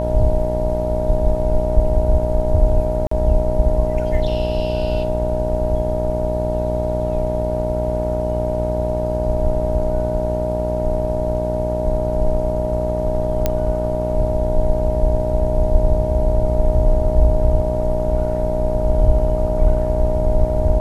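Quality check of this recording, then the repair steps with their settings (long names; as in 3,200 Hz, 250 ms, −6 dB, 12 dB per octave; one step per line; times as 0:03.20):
mains buzz 60 Hz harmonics 16 −23 dBFS
whistle 620 Hz −21 dBFS
0:03.07–0:03.11: drop-out 44 ms
0:13.46: click −4 dBFS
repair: click removal
hum removal 60 Hz, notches 16
notch filter 620 Hz, Q 30
repair the gap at 0:03.07, 44 ms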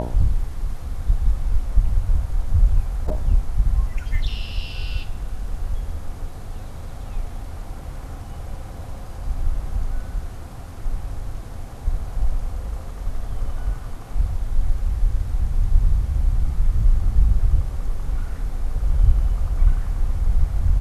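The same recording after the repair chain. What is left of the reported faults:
none of them is left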